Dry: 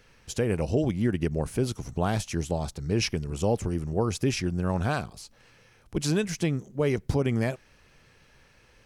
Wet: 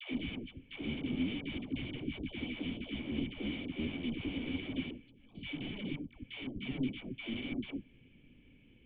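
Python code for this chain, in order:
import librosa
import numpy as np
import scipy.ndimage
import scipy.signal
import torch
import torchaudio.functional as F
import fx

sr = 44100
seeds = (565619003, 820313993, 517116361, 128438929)

p1 = fx.block_reorder(x, sr, ms=175.0, group=4)
p2 = fx.level_steps(p1, sr, step_db=18)
p3 = p1 + (p2 * 10.0 ** (0.0 / 20.0))
p4 = (np.mod(10.0 ** (28.5 / 20.0) * p3 + 1.0, 2.0) - 1.0) / 10.0 ** (28.5 / 20.0)
p5 = fx.formant_cascade(p4, sr, vowel='i')
p6 = fx.dispersion(p5, sr, late='lows', ms=121.0, hz=620.0)
y = p6 * 10.0 ** (8.5 / 20.0)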